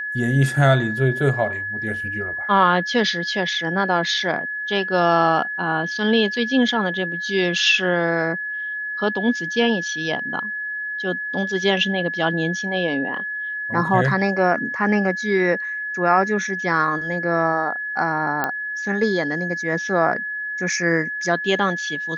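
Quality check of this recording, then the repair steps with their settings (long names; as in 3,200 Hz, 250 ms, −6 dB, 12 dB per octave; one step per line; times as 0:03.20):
whistle 1,700 Hz −25 dBFS
0:18.44: click −8 dBFS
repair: click removal
notch filter 1,700 Hz, Q 30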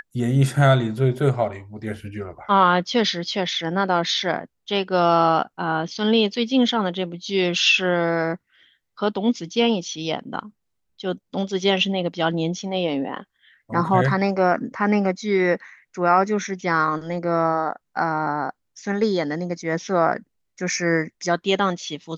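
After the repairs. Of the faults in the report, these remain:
none of them is left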